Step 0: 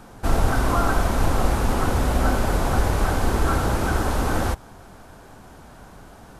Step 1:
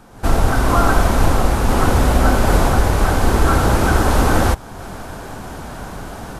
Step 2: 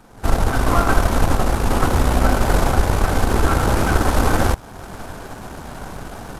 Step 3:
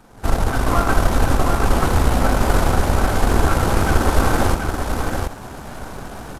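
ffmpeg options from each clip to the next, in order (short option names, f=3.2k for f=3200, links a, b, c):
-af "dynaudnorm=f=110:g=3:m=15dB,volume=-1dB"
-af "aeval=exprs='if(lt(val(0),0),0.447*val(0),val(0))':c=same"
-af "aecho=1:1:731:0.562,volume=-1dB"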